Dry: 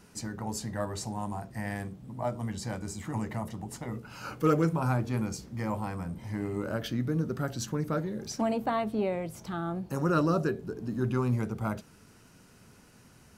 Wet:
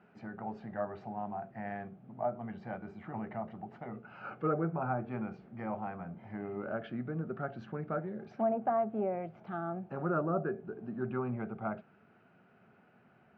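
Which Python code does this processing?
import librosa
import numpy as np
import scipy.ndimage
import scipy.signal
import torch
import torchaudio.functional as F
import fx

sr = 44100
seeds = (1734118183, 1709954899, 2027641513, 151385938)

y = fx.cabinet(x, sr, low_hz=230.0, low_slope=12, high_hz=2100.0, hz=(290.0, 490.0, 720.0, 1000.0, 1900.0), db=(-10, -7, 5, -10, -7))
y = fx.env_lowpass_down(y, sr, base_hz=1400.0, full_db=-28.0)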